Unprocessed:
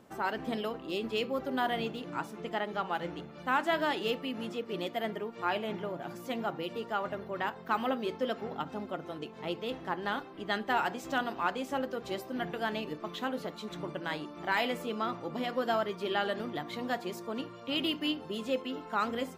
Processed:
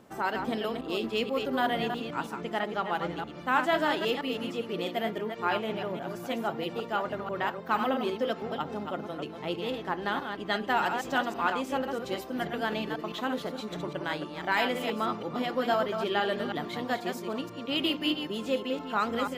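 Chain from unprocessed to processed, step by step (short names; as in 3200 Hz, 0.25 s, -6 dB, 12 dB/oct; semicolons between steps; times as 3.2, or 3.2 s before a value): reverse delay 0.162 s, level -6 dB; gain +2.5 dB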